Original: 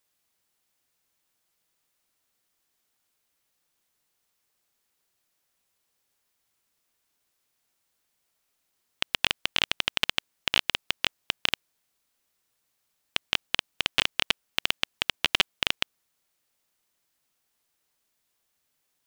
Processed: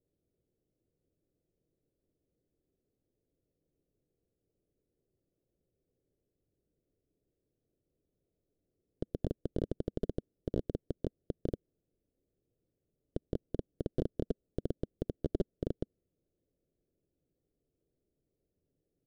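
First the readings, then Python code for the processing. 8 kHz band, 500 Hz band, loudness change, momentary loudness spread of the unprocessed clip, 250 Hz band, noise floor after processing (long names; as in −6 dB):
below −30 dB, +4.5 dB, −12.5 dB, 6 LU, +7.0 dB, below −85 dBFS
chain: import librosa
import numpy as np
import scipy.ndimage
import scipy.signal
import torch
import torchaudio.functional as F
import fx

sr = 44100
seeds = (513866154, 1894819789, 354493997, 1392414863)

p1 = scipy.signal.sosfilt(scipy.signal.cheby2(4, 40, 940.0, 'lowpass', fs=sr, output='sos'), x)
p2 = fx.peak_eq(p1, sr, hz=220.0, db=-6.0, octaves=0.33)
p3 = 10.0 ** (-36.5 / 20.0) * np.tanh(p2 / 10.0 ** (-36.5 / 20.0))
p4 = p2 + (p3 * librosa.db_to_amplitude(-11.0))
y = p4 * librosa.db_to_amplitude(8.0)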